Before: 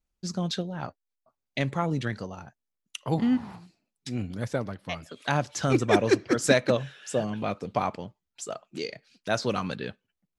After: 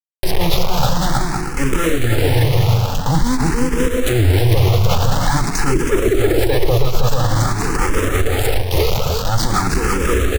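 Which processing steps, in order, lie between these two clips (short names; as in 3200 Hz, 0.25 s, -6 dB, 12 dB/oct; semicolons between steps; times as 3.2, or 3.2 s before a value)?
minimum comb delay 2.3 ms; tilt -3 dB/oct; notches 50/100/150/200/250/300/350/400 Hz; dynamic EQ 590 Hz, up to -4 dB, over -33 dBFS, Q 0.76; careless resampling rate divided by 2×, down none, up hold; bit-crush 6-bit; bouncing-ball echo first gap 0.32 s, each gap 0.6×, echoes 5; maximiser +25 dB; endless phaser +0.48 Hz; gain -3 dB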